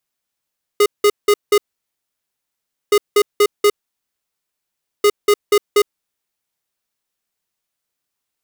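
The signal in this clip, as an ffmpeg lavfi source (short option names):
-f lavfi -i "aevalsrc='0.282*(2*lt(mod(413*t,1),0.5)-1)*clip(min(mod(mod(t,2.12),0.24),0.06-mod(mod(t,2.12),0.24))/0.005,0,1)*lt(mod(t,2.12),0.96)':d=6.36:s=44100"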